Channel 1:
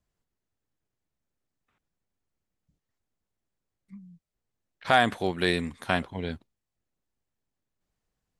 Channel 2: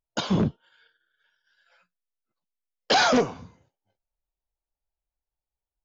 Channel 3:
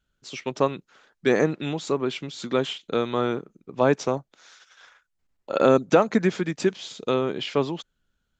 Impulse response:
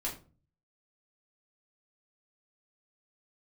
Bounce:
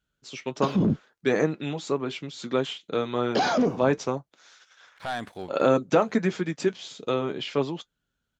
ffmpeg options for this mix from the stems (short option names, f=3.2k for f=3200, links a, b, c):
-filter_complex "[0:a]asoftclip=type=tanh:threshold=-16dB,adelay=150,volume=-7.5dB[a];[1:a]equalizer=f=240:w=0.44:g=14.5,adelay=450,volume=-8.5dB[b];[2:a]highpass=49,flanger=delay=6.1:depth=1.9:regen=-58:speed=1.4:shape=triangular,volume=1.5dB,asplit=2[c][d];[d]apad=whole_len=377019[e];[a][e]sidechaincompress=threshold=-40dB:ratio=16:attack=16:release=422[f];[f][b]amix=inputs=2:normalize=0,aeval=exprs='sgn(val(0))*max(abs(val(0))-0.00106,0)':c=same,alimiter=limit=-15.5dB:level=0:latency=1:release=14,volume=0dB[g];[c][g]amix=inputs=2:normalize=0"